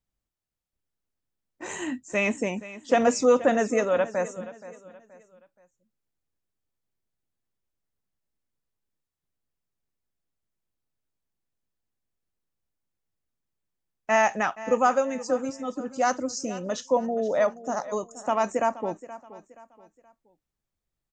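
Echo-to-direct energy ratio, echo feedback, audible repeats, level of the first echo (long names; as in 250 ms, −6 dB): −16.0 dB, 36%, 3, −16.5 dB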